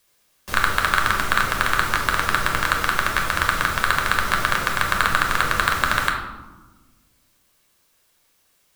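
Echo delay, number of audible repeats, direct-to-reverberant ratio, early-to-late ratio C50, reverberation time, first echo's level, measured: none, none, 1.5 dB, 5.5 dB, 1.2 s, none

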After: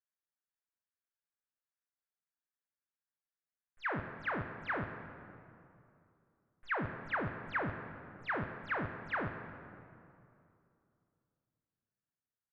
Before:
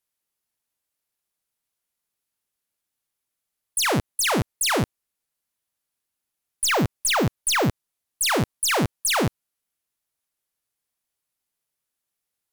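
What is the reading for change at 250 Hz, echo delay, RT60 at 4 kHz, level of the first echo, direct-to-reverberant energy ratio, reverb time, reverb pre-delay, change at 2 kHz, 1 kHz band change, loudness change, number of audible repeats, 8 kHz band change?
-16.0 dB, 0.18 s, 1.7 s, -19.0 dB, 6.5 dB, 2.7 s, 13 ms, -10.5 dB, -12.5 dB, -16.0 dB, 1, under -40 dB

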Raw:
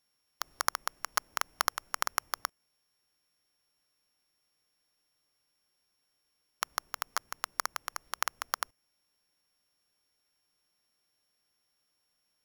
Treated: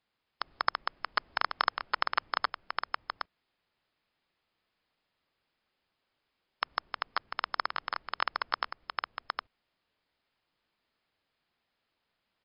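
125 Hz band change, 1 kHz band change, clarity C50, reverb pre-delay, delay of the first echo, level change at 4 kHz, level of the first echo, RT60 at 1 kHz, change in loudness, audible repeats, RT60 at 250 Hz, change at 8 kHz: n/a, +3.5 dB, none, none, 0.762 s, +1.5 dB, -3.5 dB, none, +0.5 dB, 1, none, under -40 dB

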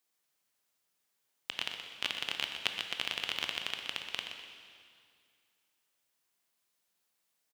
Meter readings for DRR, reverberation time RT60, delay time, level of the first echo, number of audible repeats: 3.0 dB, 2.2 s, 0.124 s, -9.0 dB, 2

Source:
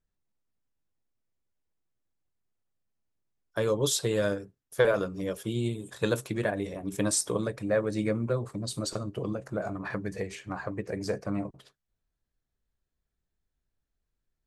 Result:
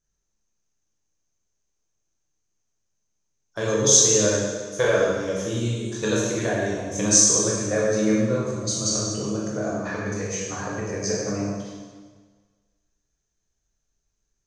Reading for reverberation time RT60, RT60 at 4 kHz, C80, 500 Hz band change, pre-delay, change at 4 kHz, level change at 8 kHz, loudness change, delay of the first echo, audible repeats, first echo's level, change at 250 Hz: 1.5 s, 1.4 s, 1.5 dB, +5.5 dB, 7 ms, +9.5 dB, +16.5 dB, +9.0 dB, none, none, none, +6.5 dB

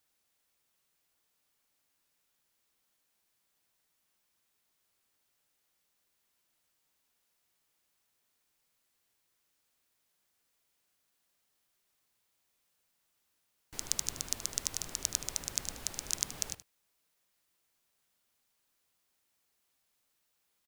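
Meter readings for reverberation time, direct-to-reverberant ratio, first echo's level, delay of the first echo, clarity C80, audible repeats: none, none, -14.0 dB, 76 ms, none, 1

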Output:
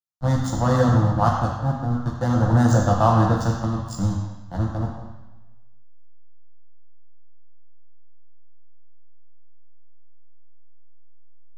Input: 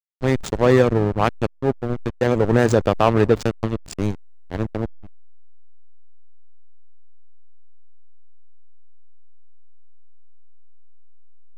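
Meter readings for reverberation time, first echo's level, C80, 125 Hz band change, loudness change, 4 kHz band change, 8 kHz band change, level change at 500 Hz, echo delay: 1.1 s, none, 4.0 dB, +4.0 dB, -1.0 dB, -4.0 dB, +1.5 dB, -7.0 dB, none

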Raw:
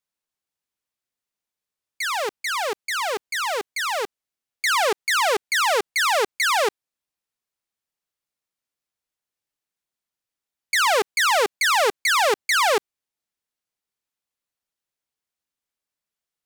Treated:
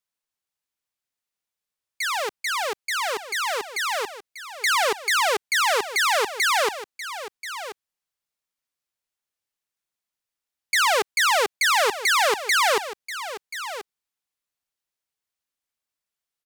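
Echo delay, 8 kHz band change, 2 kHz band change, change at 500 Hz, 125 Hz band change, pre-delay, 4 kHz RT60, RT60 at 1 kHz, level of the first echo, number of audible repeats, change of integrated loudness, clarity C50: 1.033 s, 0.0 dB, 0.0 dB, -2.0 dB, n/a, none, none, none, -12.5 dB, 1, -1.0 dB, none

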